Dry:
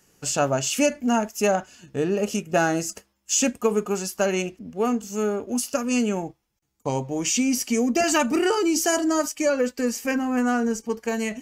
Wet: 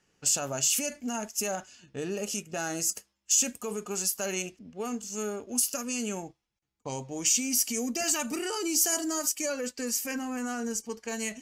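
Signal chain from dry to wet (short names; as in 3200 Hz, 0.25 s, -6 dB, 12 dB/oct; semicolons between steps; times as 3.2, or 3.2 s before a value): limiter -16 dBFS, peak gain reduction 9 dB; pre-emphasis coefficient 0.8; low-pass opened by the level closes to 2700 Hz, open at -31.5 dBFS; gain +4.5 dB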